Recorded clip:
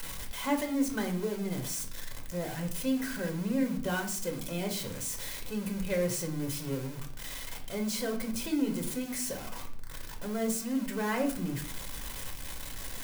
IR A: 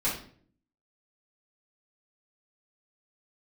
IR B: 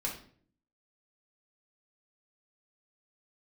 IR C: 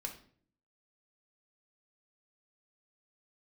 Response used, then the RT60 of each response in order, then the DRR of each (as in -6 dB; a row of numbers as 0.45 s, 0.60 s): C; 0.50 s, 0.55 s, 0.55 s; -10.0 dB, -3.0 dB, 2.0 dB